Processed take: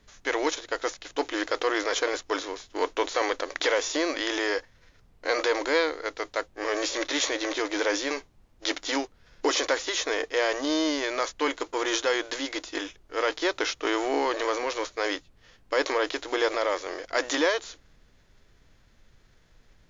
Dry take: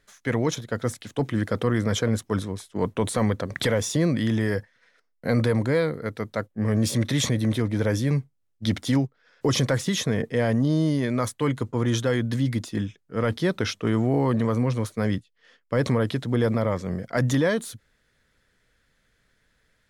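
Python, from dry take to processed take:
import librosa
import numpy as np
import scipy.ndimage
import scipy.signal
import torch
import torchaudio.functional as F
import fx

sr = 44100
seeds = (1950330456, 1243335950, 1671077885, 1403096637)

y = fx.envelope_flatten(x, sr, power=0.6)
y = fx.brickwall_bandpass(y, sr, low_hz=280.0, high_hz=7200.0)
y = fx.dmg_noise_colour(y, sr, seeds[0], colour='brown', level_db=-57.0)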